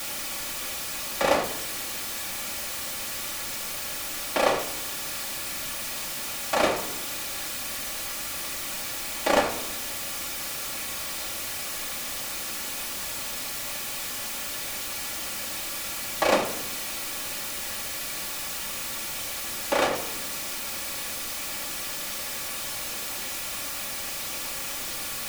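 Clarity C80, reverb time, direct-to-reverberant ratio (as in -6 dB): 13.5 dB, 0.85 s, -2.5 dB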